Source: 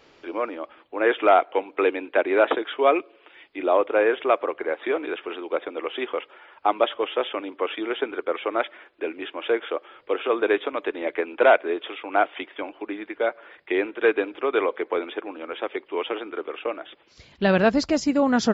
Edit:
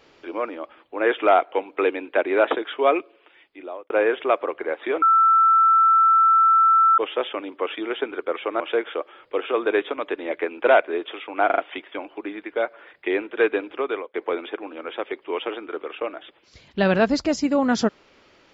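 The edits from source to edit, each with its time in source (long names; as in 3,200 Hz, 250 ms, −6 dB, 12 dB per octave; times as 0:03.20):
0:02.97–0:03.90: fade out
0:05.02–0:06.98: beep over 1,330 Hz −12.5 dBFS
0:08.60–0:09.36: remove
0:12.22: stutter 0.04 s, 4 plays
0:14.42–0:14.78: fade out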